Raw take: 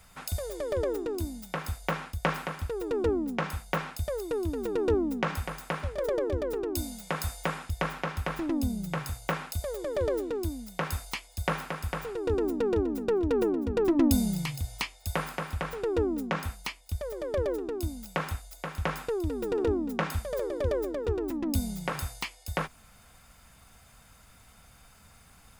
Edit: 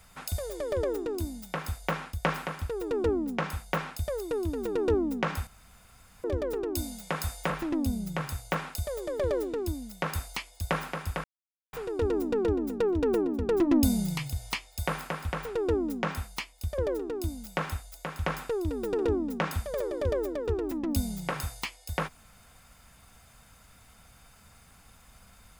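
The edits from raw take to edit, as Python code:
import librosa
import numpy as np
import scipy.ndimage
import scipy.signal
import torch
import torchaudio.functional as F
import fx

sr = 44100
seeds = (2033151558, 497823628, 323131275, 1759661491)

y = fx.edit(x, sr, fx.room_tone_fill(start_s=5.47, length_s=0.77),
    fx.cut(start_s=7.5, length_s=0.77),
    fx.insert_silence(at_s=12.01, length_s=0.49),
    fx.cut(start_s=17.06, length_s=0.31), tone=tone)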